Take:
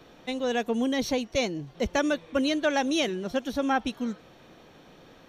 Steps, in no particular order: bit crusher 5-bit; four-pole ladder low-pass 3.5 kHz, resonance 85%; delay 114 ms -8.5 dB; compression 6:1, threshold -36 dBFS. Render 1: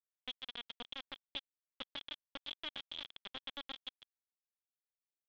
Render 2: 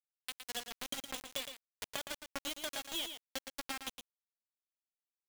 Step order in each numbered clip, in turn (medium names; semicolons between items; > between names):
compression > delay > bit crusher > four-pole ladder low-pass; four-pole ladder low-pass > bit crusher > compression > delay